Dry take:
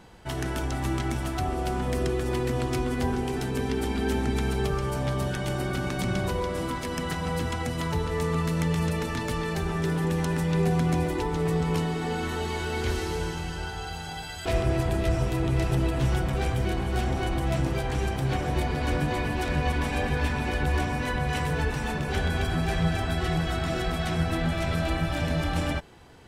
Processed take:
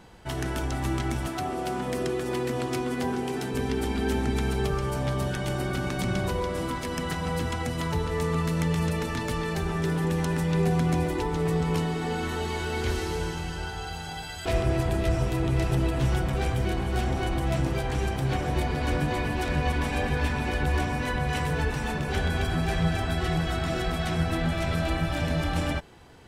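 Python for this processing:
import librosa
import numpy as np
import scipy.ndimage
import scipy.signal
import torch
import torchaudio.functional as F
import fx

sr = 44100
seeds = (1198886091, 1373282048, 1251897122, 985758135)

y = fx.highpass(x, sr, hz=150.0, slope=12, at=(1.27, 3.54))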